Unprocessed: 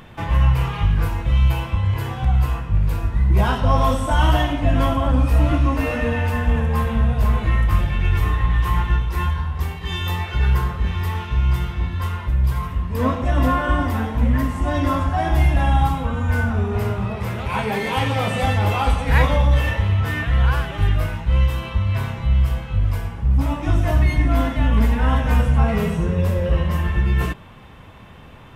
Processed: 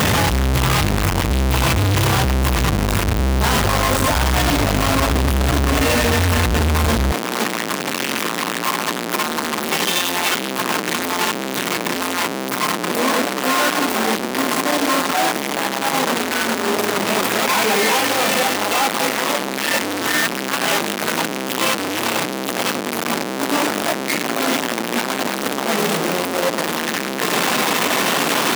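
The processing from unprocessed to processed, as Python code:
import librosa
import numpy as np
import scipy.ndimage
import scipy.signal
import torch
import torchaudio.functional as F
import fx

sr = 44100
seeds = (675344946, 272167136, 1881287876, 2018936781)

y = np.sign(x) * np.sqrt(np.mean(np.square(x)))
y = fx.highpass(y, sr, hz=fx.steps((0.0, 54.0), (7.12, 220.0)), slope=24)
y = y * librosa.db_to_amplitude(2.5)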